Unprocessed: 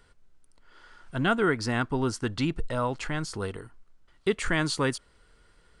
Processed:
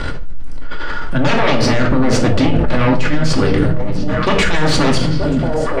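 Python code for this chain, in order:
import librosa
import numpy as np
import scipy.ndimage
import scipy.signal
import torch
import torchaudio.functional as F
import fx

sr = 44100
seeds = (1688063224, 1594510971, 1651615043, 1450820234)

y = fx.low_shelf(x, sr, hz=330.0, db=4.0)
y = fx.transient(y, sr, attack_db=-3, sustain_db=10)
y = fx.fold_sine(y, sr, drive_db=14, ceiling_db=-10.0)
y = fx.air_absorb(y, sr, metres=110.0)
y = fx.echo_stepped(y, sr, ms=463, hz=200.0, octaves=1.4, feedback_pct=70, wet_db=-5)
y = fx.room_shoebox(y, sr, seeds[0], volume_m3=710.0, walls='furnished', distance_m=2.4)
y = fx.env_flatten(y, sr, amount_pct=70)
y = y * librosa.db_to_amplitude(-11.0)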